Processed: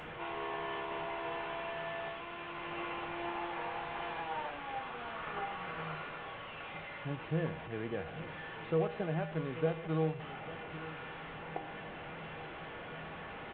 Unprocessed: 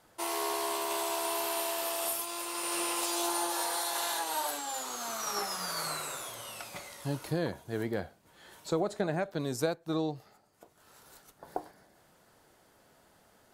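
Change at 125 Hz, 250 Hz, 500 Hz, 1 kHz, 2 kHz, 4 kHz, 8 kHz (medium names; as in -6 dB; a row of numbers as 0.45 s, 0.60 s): +1.0 dB, -3.5 dB, -3.0 dB, -4.0 dB, -0.5 dB, -11.0 dB, under -40 dB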